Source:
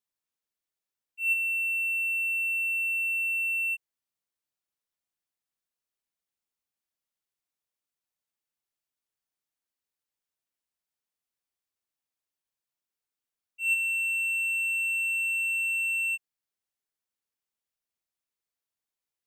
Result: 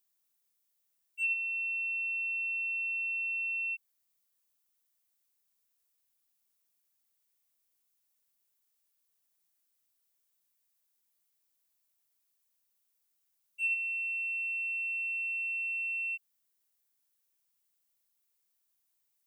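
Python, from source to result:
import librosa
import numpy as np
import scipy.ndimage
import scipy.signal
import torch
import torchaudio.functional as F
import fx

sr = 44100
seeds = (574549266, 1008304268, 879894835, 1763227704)

y = fx.env_lowpass_down(x, sr, base_hz=1900.0, full_db=-25.5)
y = fx.dmg_noise_colour(y, sr, seeds[0], colour='violet', level_db=-79.0)
y = y * librosa.db_to_amplitude(1.0)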